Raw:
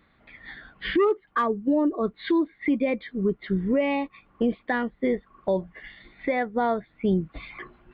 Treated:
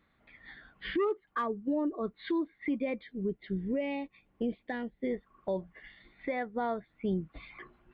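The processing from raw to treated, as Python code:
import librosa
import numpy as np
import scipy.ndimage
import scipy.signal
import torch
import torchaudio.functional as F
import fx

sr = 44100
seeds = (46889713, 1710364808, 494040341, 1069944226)

y = fx.peak_eq(x, sr, hz=1200.0, db=-13.5, octaves=0.63, at=(3.03, 5.11))
y = y * librosa.db_to_amplitude(-8.5)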